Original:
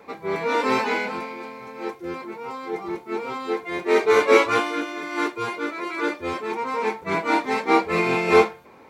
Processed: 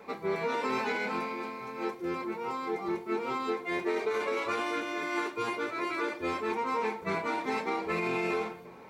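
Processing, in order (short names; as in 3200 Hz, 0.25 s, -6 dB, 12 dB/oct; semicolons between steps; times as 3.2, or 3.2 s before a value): limiter -15 dBFS, peak gain reduction 11.5 dB; compressor, threshold -26 dBFS, peak gain reduction 7 dB; reverb RT60 1.1 s, pre-delay 5 ms, DRR 10 dB; gain -2.5 dB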